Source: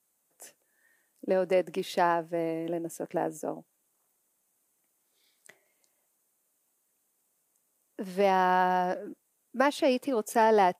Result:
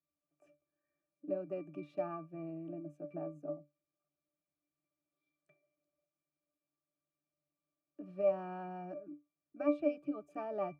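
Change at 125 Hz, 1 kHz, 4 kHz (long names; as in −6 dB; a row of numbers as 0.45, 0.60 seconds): −9.5 dB, −20.0 dB, below −25 dB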